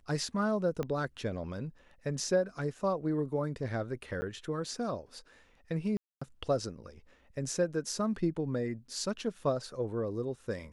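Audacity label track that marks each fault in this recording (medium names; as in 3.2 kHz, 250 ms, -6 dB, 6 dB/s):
0.830000	0.830000	pop -22 dBFS
4.210000	4.220000	dropout 10 ms
5.970000	6.210000	dropout 245 ms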